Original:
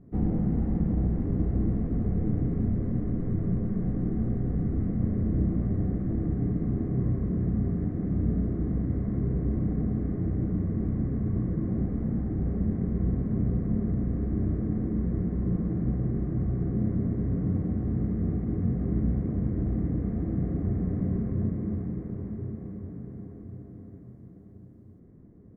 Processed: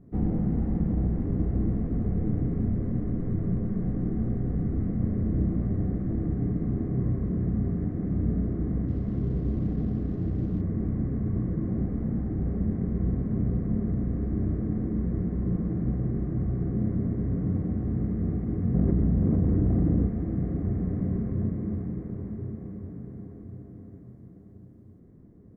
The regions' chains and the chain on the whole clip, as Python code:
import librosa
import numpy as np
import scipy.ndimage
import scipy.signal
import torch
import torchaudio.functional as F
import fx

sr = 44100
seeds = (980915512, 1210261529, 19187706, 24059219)

y = fx.chain(x, sr, fx.cvsd(bps=64000),
    fx.air_absorb(metres=230.0), at=(8.88, 10.61))
y = fx.chain(y, sr, fx.lowpass(hz=1400.0, slope=6),
    fx.doubler(ms=44.0, db=-4),
    fx.env_flatten(amount_pct=100), at=(18.74, 20.07))